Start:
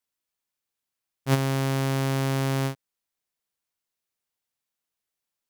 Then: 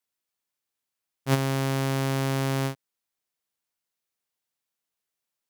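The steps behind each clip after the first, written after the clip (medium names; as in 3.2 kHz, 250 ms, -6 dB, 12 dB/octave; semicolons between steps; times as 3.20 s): bass shelf 70 Hz -7 dB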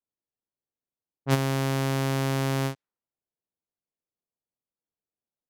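level-controlled noise filter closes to 570 Hz, open at -23.5 dBFS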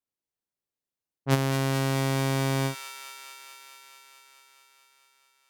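feedback echo behind a high-pass 217 ms, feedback 77%, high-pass 1.6 kHz, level -6.5 dB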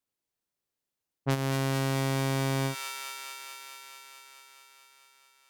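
compression 10:1, threshold -28 dBFS, peak gain reduction 11 dB; trim +3.5 dB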